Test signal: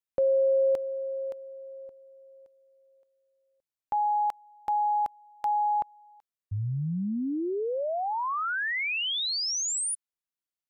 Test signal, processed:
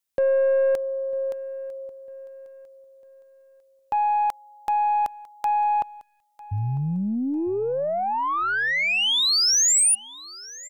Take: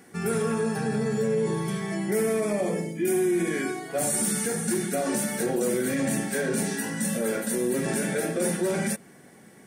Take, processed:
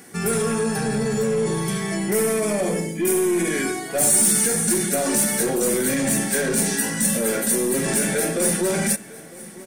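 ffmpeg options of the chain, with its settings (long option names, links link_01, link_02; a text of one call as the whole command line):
ffmpeg -i in.wav -af "aeval=exprs='(tanh(10*val(0)+0.1)-tanh(0.1))/10':channel_layout=same,highshelf=frequency=3500:gain=8,aecho=1:1:950|1900|2850:0.0944|0.0359|0.0136,volume=5dB" out.wav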